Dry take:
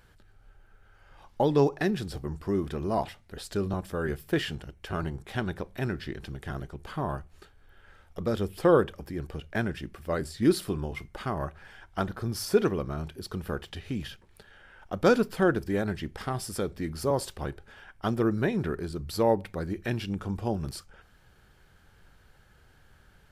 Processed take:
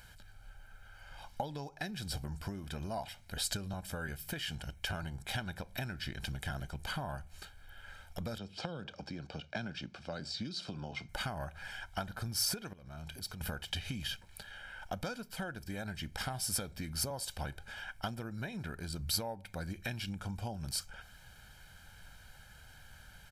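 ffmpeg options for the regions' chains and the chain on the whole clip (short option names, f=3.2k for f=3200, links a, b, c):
-filter_complex "[0:a]asettb=1/sr,asplit=3[a][b][c];[a]atrim=end=8.384[d];[b]atrim=start=8.38:end=11.09,asetpts=PTS-STARTPTS,afade=t=in:d=0.004:c=qsin,afade=t=out:st=2.706:d=0.004:c=qsin,acrossover=split=220|3000[e][f][g];[f]acompressor=threshold=-31dB:ratio=6:attack=3.2:release=140:knee=2.83:detection=peak[h];[e][h][g]amix=inputs=3:normalize=0,highpass=160,equalizer=f=1k:t=q:w=4:g=-3,equalizer=f=1.9k:t=q:w=4:g=-10,equalizer=f=3k:t=q:w=4:g=-3,lowpass=f=5.4k:w=0.5412,lowpass=f=5.4k:w=1.3066[i];[c]atrim=start=11.086[j];[d][i]acrossfade=d=0.004:c1=hsin:c2=qsin[k];[k][j]acrossfade=d=0.004:c1=qsin:c2=hsin,asettb=1/sr,asplit=3[l][m][n];[l]atrim=end=12.734[o];[m]atrim=start=12.73:end=13.41,asetpts=PTS-STARTPTS,afade=t=in:d=0.004:c=qsin,afade=t=out:st=0.676:d=0.004:c=qsin,acompressor=threshold=-42dB:ratio=8:attack=3.2:release=140:knee=1:detection=peak,asoftclip=type=hard:threshold=-40dB[p];[n]atrim=start=13.406[q];[o][p]acrossfade=d=0.004:c1=hsin:c2=qsin[r];[r][q]acrossfade=d=0.004:c1=qsin:c2=hsin,acompressor=threshold=-36dB:ratio=16,highshelf=f=2k:g=10,aecho=1:1:1.3:0.62,volume=-1.5dB"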